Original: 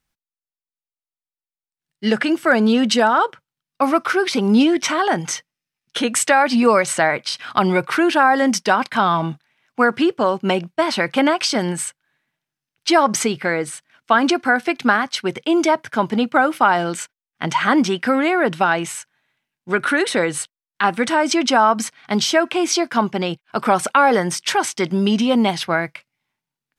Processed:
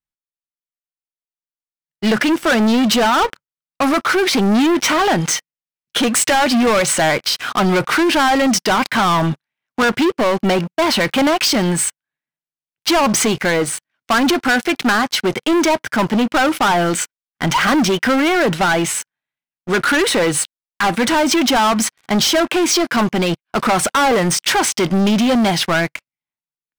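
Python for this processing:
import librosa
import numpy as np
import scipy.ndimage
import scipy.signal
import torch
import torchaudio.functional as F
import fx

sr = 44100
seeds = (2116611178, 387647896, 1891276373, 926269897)

y = fx.leveller(x, sr, passes=5)
y = y * 10.0 ** (-9.0 / 20.0)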